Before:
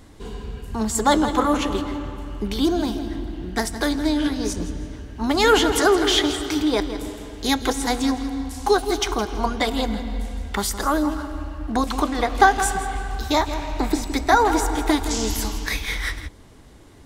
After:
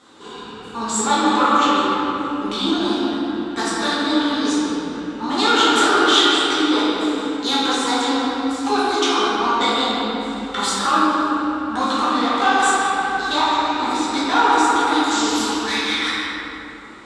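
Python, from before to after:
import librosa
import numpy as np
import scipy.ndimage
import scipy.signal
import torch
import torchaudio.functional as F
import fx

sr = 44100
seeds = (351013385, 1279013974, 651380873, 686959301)

p1 = fx.high_shelf(x, sr, hz=5400.0, db=-9.5)
p2 = fx.over_compress(p1, sr, threshold_db=-20.0, ratio=-1.0)
p3 = p1 + (p2 * 10.0 ** (0.5 / 20.0))
p4 = 10.0 ** (-10.5 / 20.0) * np.tanh(p3 / 10.0 ** (-10.5 / 20.0))
p5 = fx.cabinet(p4, sr, low_hz=360.0, low_slope=12, high_hz=9900.0, hz=(390.0, 640.0, 1300.0, 2000.0, 3700.0, 7600.0), db=(-4, -9, 7, -5, 8, 7))
p6 = fx.room_shoebox(p5, sr, seeds[0], volume_m3=120.0, walls='hard', distance_m=1.2)
y = p6 * 10.0 ** (-7.0 / 20.0)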